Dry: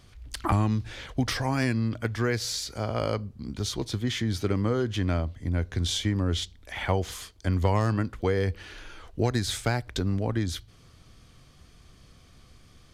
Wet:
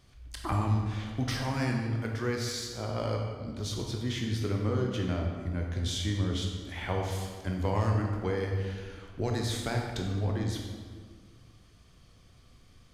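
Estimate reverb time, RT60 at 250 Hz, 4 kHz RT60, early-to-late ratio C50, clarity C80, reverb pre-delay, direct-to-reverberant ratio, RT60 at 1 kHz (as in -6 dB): 1.7 s, 2.0 s, 1.2 s, 2.5 dB, 4.5 dB, 16 ms, 0.5 dB, 1.6 s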